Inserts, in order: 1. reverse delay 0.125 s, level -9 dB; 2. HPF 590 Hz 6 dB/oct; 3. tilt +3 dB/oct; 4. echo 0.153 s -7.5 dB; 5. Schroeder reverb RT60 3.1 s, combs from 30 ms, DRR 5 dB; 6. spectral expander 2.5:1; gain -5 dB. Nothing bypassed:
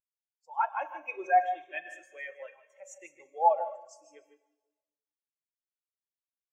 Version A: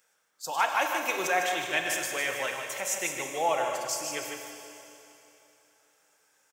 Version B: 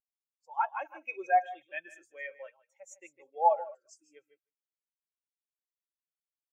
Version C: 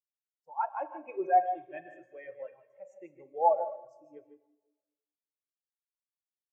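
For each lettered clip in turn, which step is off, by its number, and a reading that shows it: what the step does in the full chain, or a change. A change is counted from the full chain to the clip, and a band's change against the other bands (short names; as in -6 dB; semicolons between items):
6, momentary loudness spread change -9 LU; 5, loudness change -1.5 LU; 3, momentary loudness spread change -2 LU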